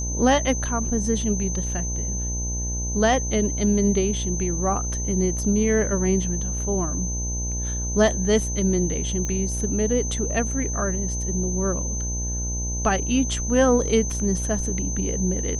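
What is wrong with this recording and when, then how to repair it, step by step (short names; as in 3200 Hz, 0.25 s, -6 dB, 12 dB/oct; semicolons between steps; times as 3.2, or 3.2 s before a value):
buzz 60 Hz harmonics 17 -28 dBFS
tone 6200 Hz -29 dBFS
9.25 pop -16 dBFS
14.1 gap 3.9 ms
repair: de-click; notch 6200 Hz, Q 30; de-hum 60 Hz, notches 17; interpolate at 14.1, 3.9 ms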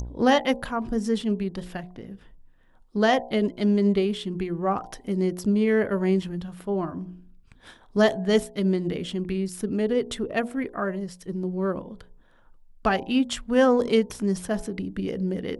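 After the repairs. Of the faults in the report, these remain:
none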